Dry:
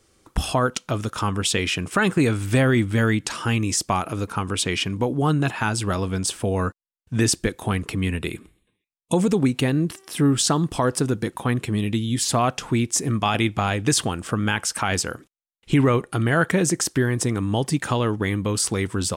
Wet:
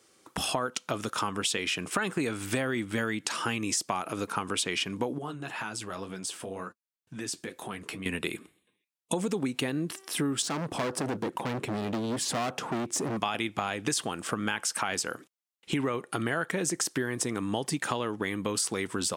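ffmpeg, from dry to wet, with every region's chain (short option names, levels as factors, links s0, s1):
-filter_complex "[0:a]asettb=1/sr,asplit=3[s0][s1][s2];[s0]atrim=end=5.184[s3];[s1]atrim=start=5.18:end=8.06,asetpts=PTS-STARTPTS,afade=t=in:d=0.004:c=qsin,afade=t=out:st=2.876:d=0.004:c=qsin,acompressor=threshold=0.0501:ratio=5:attack=3.2:release=140:knee=1:detection=peak,flanger=delay=5.3:depth=7.6:regen=-43:speed=2:shape=sinusoidal[s4];[s2]atrim=start=8.056[s5];[s3][s4]acrossfade=d=0.004:c1=hsin:c2=qsin[s6];[s6][s5]acrossfade=d=0.004:c1=qsin:c2=hsin,asettb=1/sr,asplit=3[s7][s8][s9];[s7]atrim=end=10.424[s10];[s8]atrim=start=10.42:end=13.17,asetpts=PTS-STARTPTS,afade=t=in:d=0.004:c=qsin,afade=t=out:st=2.746:d=0.004:c=qsin,tiltshelf=f=1500:g=7,volume=12.6,asoftclip=hard,volume=0.0794[s11];[s9]atrim=start=13.166[s12];[s10][s11]acrossfade=d=0.004:c1=hsin:c2=qsin[s13];[s13][s12]acrossfade=d=0.004:c1=qsin:c2=hsin,highpass=170,lowshelf=f=360:g=-5,acompressor=threshold=0.0501:ratio=6"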